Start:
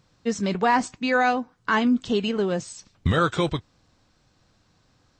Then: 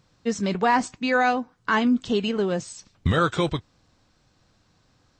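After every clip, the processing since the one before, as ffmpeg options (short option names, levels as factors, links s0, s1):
-af anull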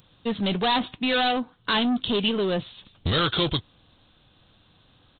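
-af "aresample=8000,asoftclip=type=tanh:threshold=0.0631,aresample=44100,aexciter=amount=6.2:drive=2.9:freq=3100,volume=1.5"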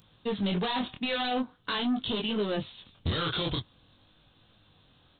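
-af "flanger=delay=18.5:depth=6.5:speed=0.46,alimiter=limit=0.075:level=0:latency=1:release=11"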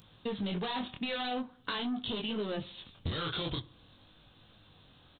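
-filter_complex "[0:a]acompressor=threshold=0.0126:ratio=2.5,asplit=2[s0][s1];[s1]adelay=64,lowpass=f=2000:p=1,volume=0.112,asplit=2[s2][s3];[s3]adelay=64,lowpass=f=2000:p=1,volume=0.51,asplit=2[s4][s5];[s5]adelay=64,lowpass=f=2000:p=1,volume=0.51,asplit=2[s6][s7];[s7]adelay=64,lowpass=f=2000:p=1,volume=0.51[s8];[s0][s2][s4][s6][s8]amix=inputs=5:normalize=0,volume=1.26"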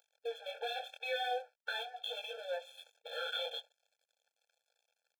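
-af "aeval=exprs='sgn(val(0))*max(abs(val(0))-0.00211,0)':c=same,afftfilt=real='re*eq(mod(floor(b*sr/1024/450),2),1)':imag='im*eq(mod(floor(b*sr/1024/450),2),1)':win_size=1024:overlap=0.75,volume=1.26"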